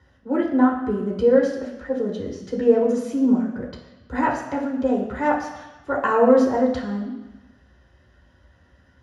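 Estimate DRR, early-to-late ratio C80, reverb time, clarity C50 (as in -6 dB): -4.5 dB, 8.0 dB, 1.1 s, 5.5 dB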